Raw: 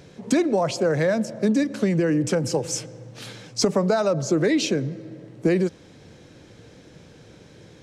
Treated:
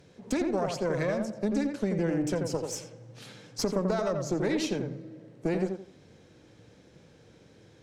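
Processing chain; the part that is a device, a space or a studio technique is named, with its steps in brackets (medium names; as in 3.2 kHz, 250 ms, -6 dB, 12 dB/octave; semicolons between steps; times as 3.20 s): rockabilly slapback (valve stage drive 13 dB, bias 0.75; tape echo 86 ms, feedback 31%, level -3 dB, low-pass 1.5 kHz); trim -5 dB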